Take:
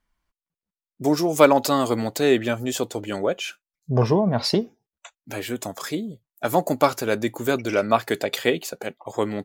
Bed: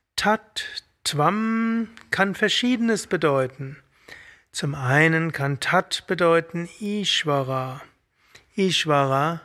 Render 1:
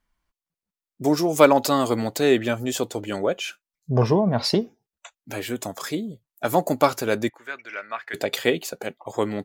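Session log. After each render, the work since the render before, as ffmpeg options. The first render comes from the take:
ffmpeg -i in.wav -filter_complex "[0:a]asplit=3[link_01][link_02][link_03];[link_01]afade=type=out:start_time=7.28:duration=0.02[link_04];[link_02]bandpass=frequency=1800:width_type=q:width=2.7,afade=type=in:start_time=7.28:duration=0.02,afade=type=out:start_time=8.13:duration=0.02[link_05];[link_03]afade=type=in:start_time=8.13:duration=0.02[link_06];[link_04][link_05][link_06]amix=inputs=3:normalize=0" out.wav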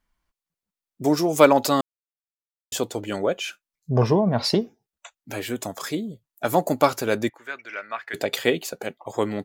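ffmpeg -i in.wav -filter_complex "[0:a]asplit=3[link_01][link_02][link_03];[link_01]atrim=end=1.81,asetpts=PTS-STARTPTS,afade=type=out:start_time=1.806:duration=0.004:curve=hsin[link_04];[link_02]atrim=start=1.81:end=2.72,asetpts=PTS-STARTPTS,volume=0[link_05];[link_03]atrim=start=2.72,asetpts=PTS-STARTPTS,afade=type=in:duration=0.004:curve=hsin[link_06];[link_04][link_05][link_06]concat=n=3:v=0:a=1" out.wav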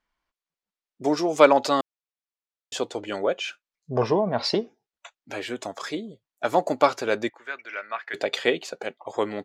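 ffmpeg -i in.wav -af "lowpass=5300,bass=frequency=250:gain=-11,treble=frequency=4000:gain=0" out.wav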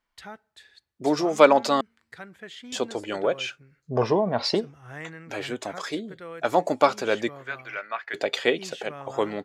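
ffmpeg -i in.wav -i bed.wav -filter_complex "[1:a]volume=-21.5dB[link_01];[0:a][link_01]amix=inputs=2:normalize=0" out.wav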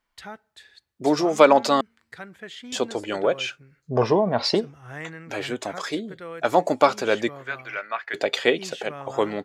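ffmpeg -i in.wav -af "volume=2.5dB,alimiter=limit=-2dB:level=0:latency=1" out.wav

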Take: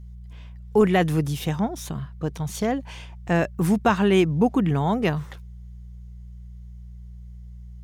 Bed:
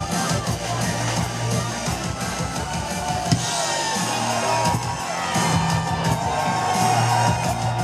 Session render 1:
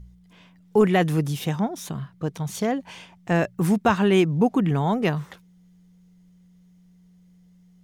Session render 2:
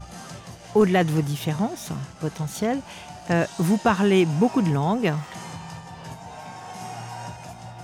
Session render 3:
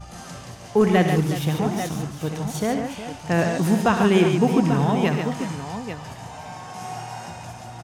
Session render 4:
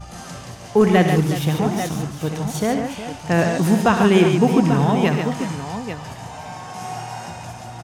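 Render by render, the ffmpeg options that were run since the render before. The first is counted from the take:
ffmpeg -i in.wav -af "bandreject=frequency=60:width_type=h:width=4,bandreject=frequency=120:width_type=h:width=4" out.wav
ffmpeg -i in.wav -i bed.wav -filter_complex "[1:a]volume=-17dB[link_01];[0:a][link_01]amix=inputs=2:normalize=0" out.wav
ffmpeg -i in.wav -af "aecho=1:1:65|108|142|363|841|845:0.282|0.266|0.473|0.224|0.299|0.106" out.wav
ffmpeg -i in.wav -af "volume=3dB" out.wav

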